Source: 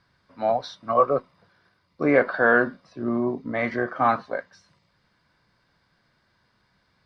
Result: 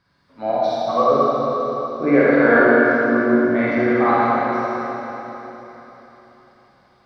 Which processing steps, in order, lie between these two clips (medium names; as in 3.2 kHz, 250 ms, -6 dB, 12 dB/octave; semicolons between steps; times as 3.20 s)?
peaking EQ 300 Hz +3.5 dB 0.99 oct; Schroeder reverb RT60 3.9 s, DRR -8 dB; trim -2.5 dB